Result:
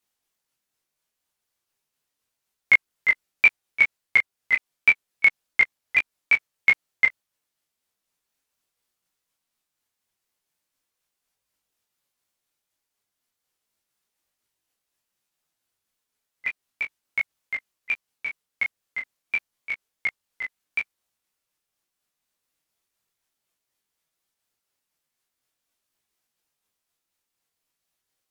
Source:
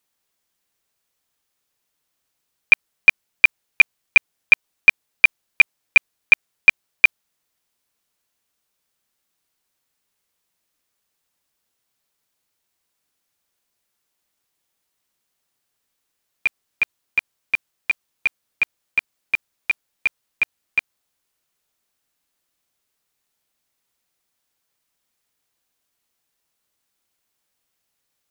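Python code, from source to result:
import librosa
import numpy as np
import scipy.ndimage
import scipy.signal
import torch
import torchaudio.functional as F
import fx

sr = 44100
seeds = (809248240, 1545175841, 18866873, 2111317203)

y = fx.pitch_ramps(x, sr, semitones=-3.0, every_ms=284)
y = fx.detune_double(y, sr, cents=12)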